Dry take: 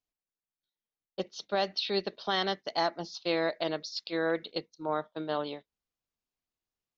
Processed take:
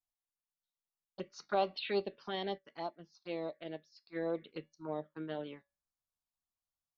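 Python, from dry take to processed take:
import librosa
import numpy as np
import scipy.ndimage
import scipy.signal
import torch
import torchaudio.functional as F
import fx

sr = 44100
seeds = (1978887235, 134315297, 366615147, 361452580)

y = fx.env_lowpass_down(x, sr, base_hz=2400.0, full_db=-27.5)
y = fx.peak_eq(y, sr, hz=1500.0, db=10.0, octaves=2.0, at=(1.31, 2.03))
y = fx.comb_fb(y, sr, f0_hz=78.0, decay_s=0.17, harmonics='all', damping=0.0, mix_pct=40)
y = fx.env_phaser(y, sr, low_hz=370.0, high_hz=1800.0, full_db=-26.5)
y = fx.comb_fb(y, sr, f0_hz=570.0, decay_s=0.32, harmonics='all', damping=0.0, mix_pct=40)
y = fx.wow_flutter(y, sr, seeds[0], rate_hz=2.1, depth_cents=28.0)
y = fx.upward_expand(y, sr, threshold_db=-52.0, expansion=1.5, at=(2.57, 4.15), fade=0.02)
y = y * librosa.db_to_amplitude(2.5)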